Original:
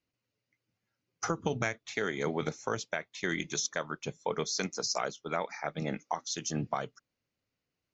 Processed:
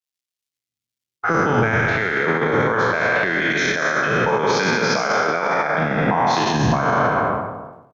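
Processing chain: spectral trails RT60 2.56 s; LPF 3000 Hz 12 dB/oct; low-pass opened by the level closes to 740 Hz, open at -23 dBFS; dynamic EQ 1600 Hz, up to +7 dB, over -47 dBFS, Q 3.5; AGC gain up to 13.5 dB; crackle 460/s -51 dBFS; outdoor echo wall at 27 m, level -8 dB; maximiser +15 dB; three-band expander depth 100%; gain -8.5 dB

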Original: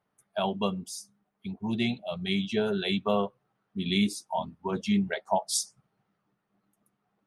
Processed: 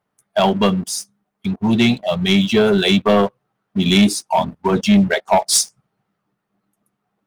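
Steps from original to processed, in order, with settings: sample leveller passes 2; gain +7.5 dB

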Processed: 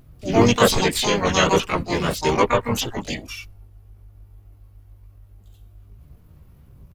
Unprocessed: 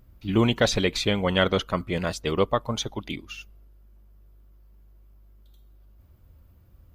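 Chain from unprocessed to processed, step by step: chorus voices 4, 0.57 Hz, delay 15 ms, depth 2.5 ms; harmoniser -3 st -2 dB, +4 st -12 dB, +12 st -2 dB; gain +4.5 dB

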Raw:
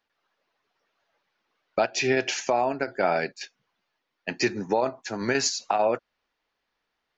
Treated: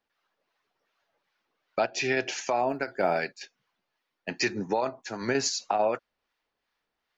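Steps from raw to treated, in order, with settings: harmonic tremolo 2.6 Hz, depth 50%, crossover 820 Hz; 2.69–4.3 short-mantissa float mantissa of 6-bit

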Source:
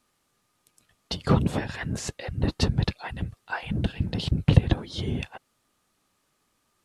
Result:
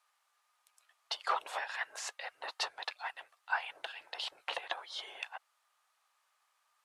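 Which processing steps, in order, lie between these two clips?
2.8–3.44 half-wave gain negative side -3 dB; inverse Chebyshev high-pass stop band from 230 Hz, stop band 60 dB; high shelf 2600 Hz -8.5 dB; gain +1 dB

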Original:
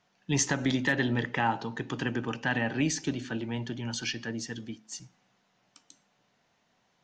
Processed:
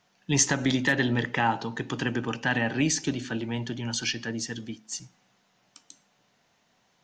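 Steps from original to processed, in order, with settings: high shelf 4600 Hz +5 dB; gain +2.5 dB

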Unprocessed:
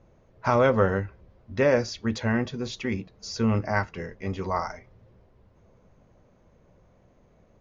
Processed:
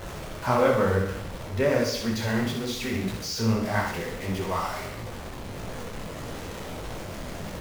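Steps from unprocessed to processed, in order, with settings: zero-crossing step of -28 dBFS; flutter echo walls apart 10.8 m, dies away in 0.72 s; detuned doubles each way 55 cents

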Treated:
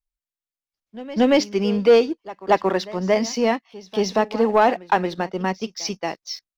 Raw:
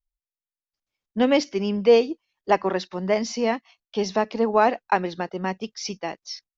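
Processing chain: sample leveller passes 1; pre-echo 0.229 s -18 dB

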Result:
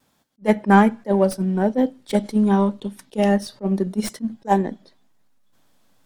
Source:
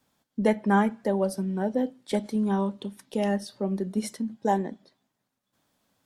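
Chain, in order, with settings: tracing distortion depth 0.037 ms; vibrato 1.2 Hz 21 cents; in parallel at -11 dB: backlash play -25 dBFS; on the sum: attack slew limiter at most 440 dB/s; gain +6.5 dB

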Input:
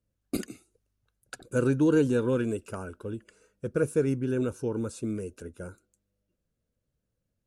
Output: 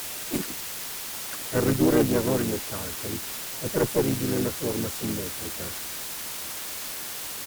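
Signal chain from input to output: requantised 6-bit, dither triangular; harmoniser -4 st -5 dB, +4 st -8 dB; added harmonics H 4 -18 dB, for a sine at -9.5 dBFS

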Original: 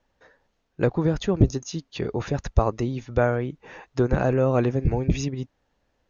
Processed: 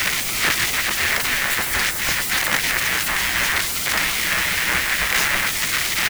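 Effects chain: infinite clipping; on a send: echo 0.41 s -6.5 dB; on the sum: spectral gate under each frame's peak -20 dB weak; bell 1900 Hz +12.5 dB 0.97 oct; requantised 6-bit, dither triangular; low shelf 240 Hz +11 dB; gain +7 dB

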